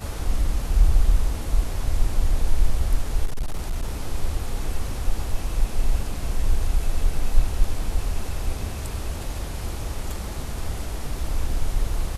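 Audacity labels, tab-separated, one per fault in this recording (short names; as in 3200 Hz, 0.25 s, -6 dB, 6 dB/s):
3.260000	3.930000	clipped -20.5 dBFS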